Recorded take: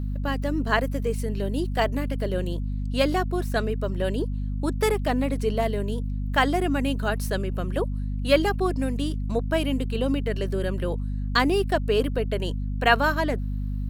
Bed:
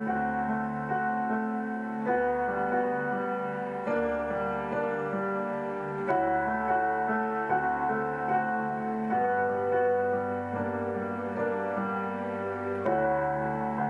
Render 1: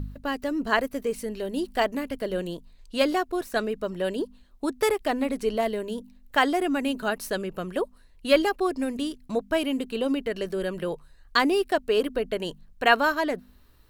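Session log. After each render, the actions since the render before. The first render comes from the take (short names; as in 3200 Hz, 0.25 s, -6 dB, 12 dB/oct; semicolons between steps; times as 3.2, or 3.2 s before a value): de-hum 50 Hz, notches 5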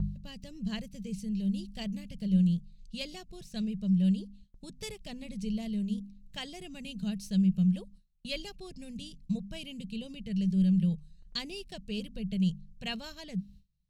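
EQ curve 110 Hz 0 dB, 190 Hz +14 dB, 270 Hz -21 dB, 510 Hz -21 dB, 1400 Hz -30 dB, 2600 Hz -10 dB, 6200 Hz -4 dB, 16000 Hz -22 dB; gate with hold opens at -45 dBFS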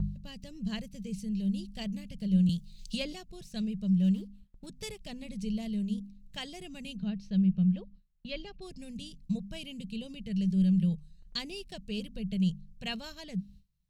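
2.49–3.13 three-band squash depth 100%; 3.99–4.67 median filter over 9 samples; 6.96–8.62 air absorption 220 m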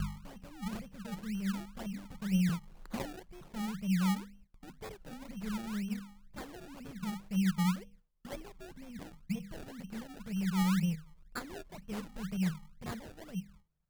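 resonator 160 Hz, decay 0.46 s, harmonics odd, mix 40%; decimation with a swept rate 29×, swing 100% 2 Hz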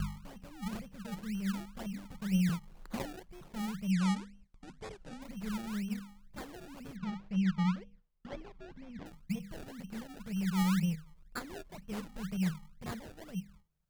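3.91–5.22 LPF 9100 Hz 24 dB/oct; 6.96–9.06 air absorption 160 m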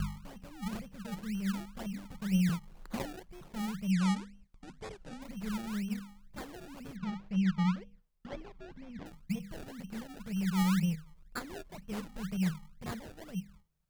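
gain +1 dB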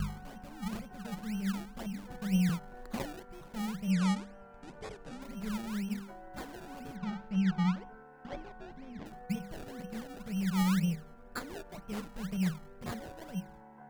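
add bed -24 dB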